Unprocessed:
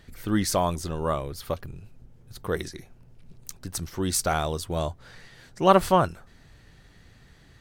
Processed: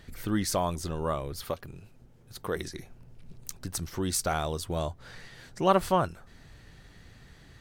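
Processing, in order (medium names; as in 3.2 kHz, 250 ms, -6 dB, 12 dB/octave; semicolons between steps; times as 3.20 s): 1.44–2.56 s: bass shelf 140 Hz -9.5 dB; in parallel at +3 dB: compression, threshold -34 dBFS, peak gain reduction 21 dB; on the sum: trim -6.5 dB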